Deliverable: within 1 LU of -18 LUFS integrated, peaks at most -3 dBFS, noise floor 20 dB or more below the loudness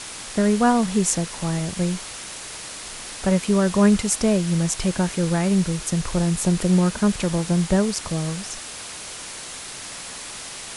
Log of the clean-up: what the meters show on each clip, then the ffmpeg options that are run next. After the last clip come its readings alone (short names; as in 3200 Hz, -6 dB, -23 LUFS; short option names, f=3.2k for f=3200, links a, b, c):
noise floor -36 dBFS; noise floor target -42 dBFS; loudness -22.0 LUFS; peak -3.5 dBFS; loudness target -18.0 LUFS
-> -af "afftdn=nr=6:nf=-36"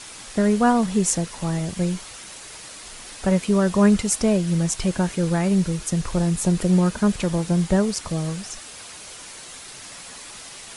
noise floor -40 dBFS; noise floor target -42 dBFS
-> -af "afftdn=nr=6:nf=-40"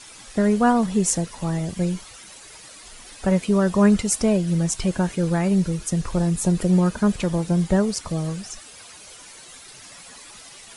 noise floor -44 dBFS; loudness -21.5 LUFS; peak -4.0 dBFS; loudness target -18.0 LUFS
-> -af "volume=3.5dB,alimiter=limit=-3dB:level=0:latency=1"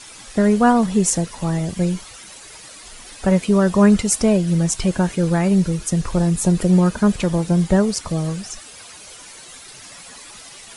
loudness -18.0 LUFS; peak -3.0 dBFS; noise floor -41 dBFS